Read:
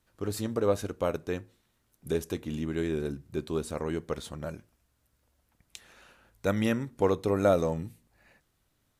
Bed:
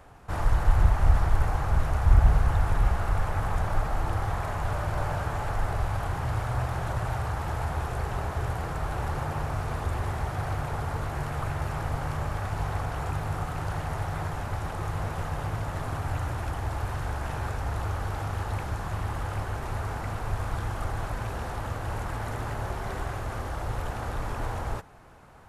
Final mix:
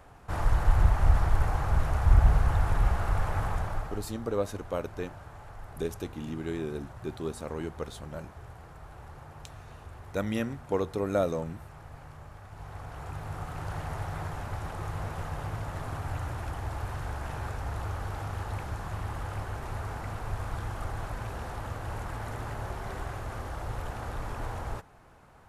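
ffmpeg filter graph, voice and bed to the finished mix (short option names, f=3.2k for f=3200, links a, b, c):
-filter_complex "[0:a]adelay=3700,volume=-3.5dB[a];[1:a]volume=11dB,afade=t=out:st=3.41:d=0.67:silence=0.177828,afade=t=in:st=12.48:d=1.33:silence=0.237137[b];[a][b]amix=inputs=2:normalize=0"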